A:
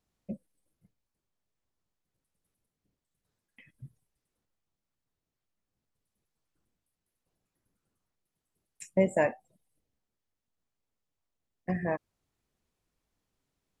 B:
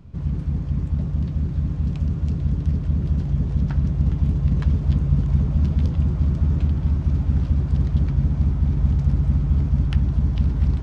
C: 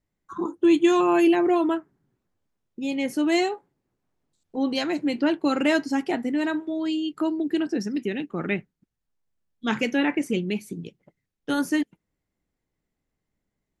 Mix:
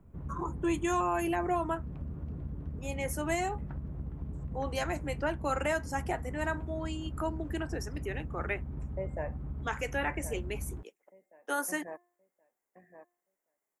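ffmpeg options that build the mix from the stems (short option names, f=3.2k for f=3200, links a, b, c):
-filter_complex "[0:a]bandreject=f=351.7:t=h:w=4,bandreject=f=703.4:t=h:w=4,bandreject=f=1.0551k:t=h:w=4,bandreject=f=1.4068k:t=h:w=4,bandreject=f=1.7585k:t=h:w=4,bandreject=f=2.1102k:t=h:w=4,bandreject=f=2.4619k:t=h:w=4,bandreject=f=2.8136k:t=h:w=4,bandreject=f=3.1653k:t=h:w=4,bandreject=f=3.517k:t=h:w=4,bandreject=f=3.8687k:t=h:w=4,bandreject=f=4.2204k:t=h:w=4,bandreject=f=4.5721k:t=h:w=4,bandreject=f=4.9238k:t=h:w=4,bandreject=f=5.2755k:t=h:w=4,bandreject=f=5.6272k:t=h:w=4,bandreject=f=5.9789k:t=h:w=4,bandreject=f=6.3306k:t=h:w=4,bandreject=f=6.6823k:t=h:w=4,bandreject=f=7.034k:t=h:w=4,bandreject=f=7.3857k:t=h:w=4,bandreject=f=7.7374k:t=h:w=4,bandreject=f=8.0891k:t=h:w=4,bandreject=f=8.4408k:t=h:w=4,bandreject=f=8.7925k:t=h:w=4,bandreject=f=9.1442k:t=h:w=4,bandreject=f=9.4959k:t=h:w=4,bandreject=f=9.8476k:t=h:w=4,bandreject=f=10.1993k:t=h:w=4,bandreject=f=10.551k:t=h:w=4,bandreject=f=10.9027k:t=h:w=4,bandreject=f=11.2544k:t=h:w=4,bandreject=f=11.6061k:t=h:w=4,bandreject=f=11.9578k:t=h:w=4,bandreject=f=12.3095k:t=h:w=4,bandreject=f=12.6612k:t=h:w=4,bandreject=f=13.0129k:t=h:w=4,bandreject=f=13.3646k:t=h:w=4,bandreject=f=13.7163k:t=h:w=4,volume=-11dB,asplit=2[a][b];[b]volume=-10dB[c];[1:a]aemphasis=mode=reproduction:type=bsi,acompressor=threshold=-10dB:ratio=6,volume=-8dB[d];[2:a]highpass=560,aexciter=amount=5.9:drive=7.6:freq=5.9k,volume=-0.5dB[e];[c]aecho=0:1:1073|2146|3219|4292:1|0.23|0.0529|0.0122[f];[a][d][e][f]amix=inputs=4:normalize=0,acrossover=split=270 2100:gain=0.126 1 0.178[g][h][i];[g][h][i]amix=inputs=3:normalize=0,alimiter=limit=-20.5dB:level=0:latency=1:release=262"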